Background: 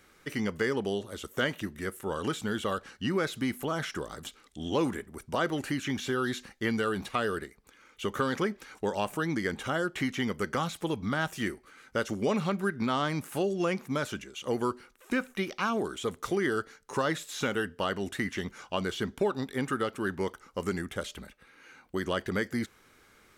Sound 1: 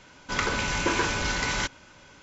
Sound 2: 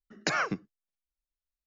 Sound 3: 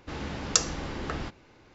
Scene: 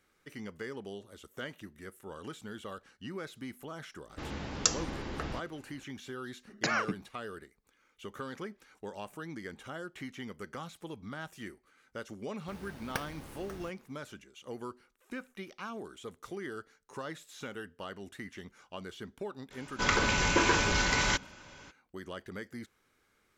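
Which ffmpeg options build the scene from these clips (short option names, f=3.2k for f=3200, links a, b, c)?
-filter_complex "[3:a]asplit=2[a][b];[0:a]volume=-12dB[c];[b]acrusher=samples=6:mix=1:aa=0.000001[d];[a]atrim=end=1.74,asetpts=PTS-STARTPTS,volume=-4dB,afade=t=in:d=0.004:c=hsin,afade=t=out:st=1.736:d=0.004:c=hsin,adelay=4100[e];[2:a]atrim=end=1.66,asetpts=PTS-STARTPTS,volume=-2dB,afade=t=in:d=0.004:c=hsin,afade=t=out:st=1.656:d=0.004:c=hsin,adelay=6370[f];[d]atrim=end=1.74,asetpts=PTS-STARTPTS,volume=-13.5dB,afade=t=in:d=0.004:c=hsin,afade=t=out:st=1.736:d=0.004:c=hsin,adelay=12400[g];[1:a]atrim=end=2.22,asetpts=PTS-STARTPTS,volume=-0.5dB,afade=t=in:d=0.02,afade=t=out:st=2.2:d=0.02,adelay=19500[h];[c][e][f][g][h]amix=inputs=5:normalize=0"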